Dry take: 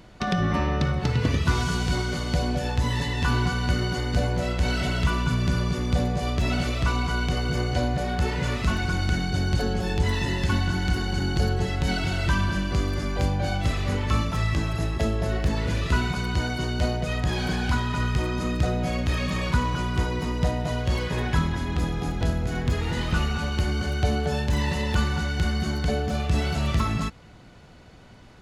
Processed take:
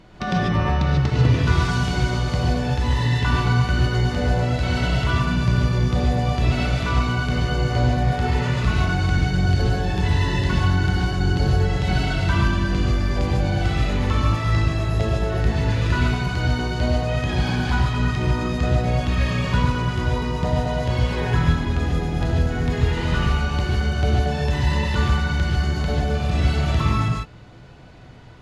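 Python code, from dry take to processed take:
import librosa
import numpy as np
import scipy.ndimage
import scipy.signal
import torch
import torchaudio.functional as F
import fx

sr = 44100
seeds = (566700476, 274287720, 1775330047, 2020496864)

y = fx.high_shelf(x, sr, hz=8300.0, db=-12.0)
y = fx.rev_gated(y, sr, seeds[0], gate_ms=170, shape='rising', drr_db=-1.5)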